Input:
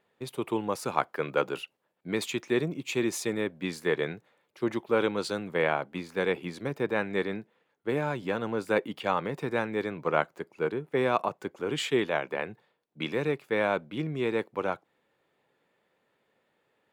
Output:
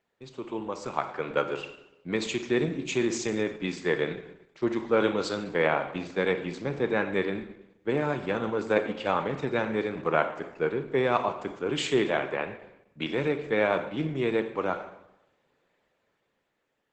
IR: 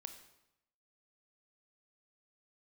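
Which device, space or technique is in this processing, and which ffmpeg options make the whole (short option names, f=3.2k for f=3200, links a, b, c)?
speakerphone in a meeting room: -filter_complex "[1:a]atrim=start_sample=2205[a];[0:a][a]afir=irnorm=-1:irlink=0,dynaudnorm=f=180:g=13:m=7dB" -ar 48000 -c:a libopus -b:a 12k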